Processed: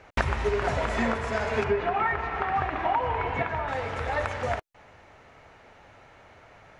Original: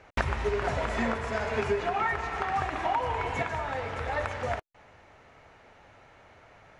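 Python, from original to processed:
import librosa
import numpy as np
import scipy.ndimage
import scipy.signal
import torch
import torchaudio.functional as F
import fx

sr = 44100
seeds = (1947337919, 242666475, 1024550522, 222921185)

y = fx.lowpass(x, sr, hz=2900.0, slope=12, at=(1.64, 3.68))
y = y * 10.0 ** (2.5 / 20.0)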